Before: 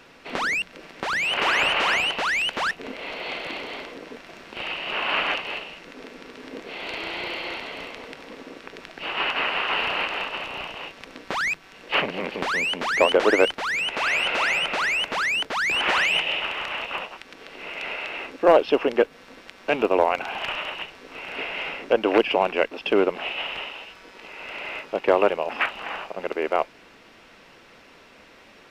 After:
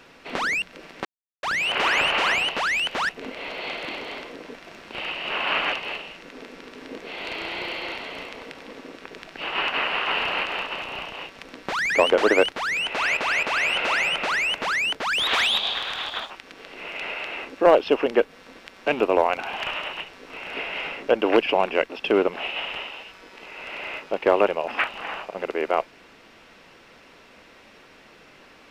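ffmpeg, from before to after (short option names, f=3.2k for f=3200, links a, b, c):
-filter_complex "[0:a]asplit=7[a][b][c][d][e][f][g];[a]atrim=end=1.05,asetpts=PTS-STARTPTS,afade=t=out:st=1.046:d=0.004:c=hsin,apad=pad_dur=0.38[h];[b]atrim=start=1.05:end=11.522,asetpts=PTS-STARTPTS,afade=t=in:d=0.004:c=hsin[i];[c]atrim=start=12.918:end=14.192[j];[d]atrim=start=13.928:end=14.192[k];[e]atrim=start=13.928:end=15.634[l];[f]atrim=start=15.63:end=17.12,asetpts=PTS-STARTPTS,asetrate=56007,aresample=44100,atrim=end_sample=51739,asetpts=PTS-STARTPTS[m];[g]atrim=start=17.116[n];[h][i]concat=n=2:v=0:a=1[o];[o][j]acrossfade=d=0.004:c1=hsin:c2=hsin[p];[p][k]acrossfade=d=0.004:c1=hsin:c2=hsin[q];[q][l]acrossfade=d=0.004:c1=hsin:c2=hsin[r];[r][m]acrossfade=d=0.004:c1=hsin:c2=hsin[s];[s][n]acrossfade=d=0.004:c1=hsin:c2=hsin"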